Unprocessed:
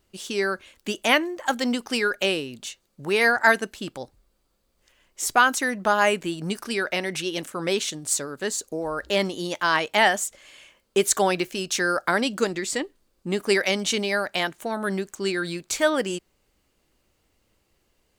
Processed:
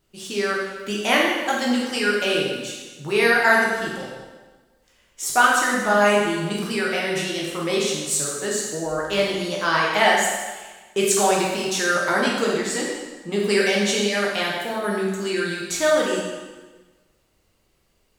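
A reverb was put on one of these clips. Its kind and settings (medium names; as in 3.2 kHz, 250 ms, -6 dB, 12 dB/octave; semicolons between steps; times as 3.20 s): plate-style reverb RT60 1.3 s, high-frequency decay 0.9×, DRR -4.5 dB; trim -3 dB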